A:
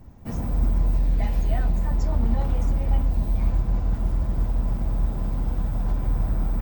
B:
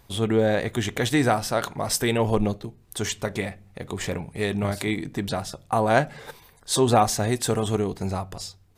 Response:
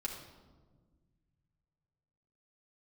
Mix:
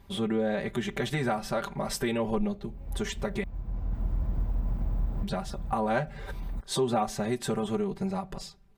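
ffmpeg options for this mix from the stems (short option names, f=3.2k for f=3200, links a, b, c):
-filter_complex "[0:a]volume=-3.5dB,afade=t=in:st=2.49:d=0.79:silence=0.237137[a];[1:a]aecho=1:1:5.1:0.94,volume=-4.5dB,asplit=3[b][c][d];[b]atrim=end=3.44,asetpts=PTS-STARTPTS,afade=t=out:st=3.436:d=0.004:c=hsin[e];[c]atrim=start=3.44:end=5.23,asetpts=PTS-STARTPTS,volume=0[f];[d]atrim=start=5.23,asetpts=PTS-STARTPTS,afade=t=in:d=0.004:c=hsin[g];[e][f][g]concat=n=3:v=0:a=1,asplit=2[h][i];[i]apad=whole_len=291732[j];[a][j]sidechaincompress=threshold=-43dB:ratio=5:attack=21:release=531[k];[k][h]amix=inputs=2:normalize=0,bass=f=250:g=3,treble=f=4k:g=-8,acompressor=threshold=-29dB:ratio=2"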